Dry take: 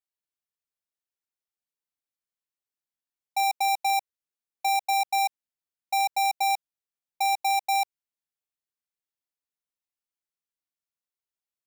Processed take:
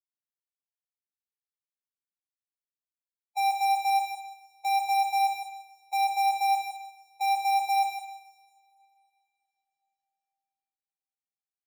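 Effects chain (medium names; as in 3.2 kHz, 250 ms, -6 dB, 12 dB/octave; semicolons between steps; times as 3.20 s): expander on every frequency bin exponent 3; treble shelf 8.7 kHz -4.5 dB; band-stop 510 Hz, Q 16; echo from a far wall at 27 m, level -7 dB; two-slope reverb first 0.83 s, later 3.3 s, from -26 dB, DRR 0 dB; trim -4.5 dB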